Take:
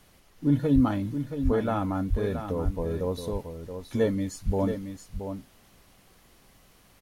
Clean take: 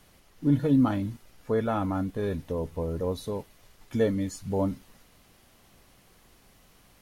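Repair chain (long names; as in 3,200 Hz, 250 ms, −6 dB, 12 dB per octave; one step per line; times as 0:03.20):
high-pass at the plosives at 0:00.74/0:01.44/0:02.09/0:02.64/0:04.45
echo removal 675 ms −8.5 dB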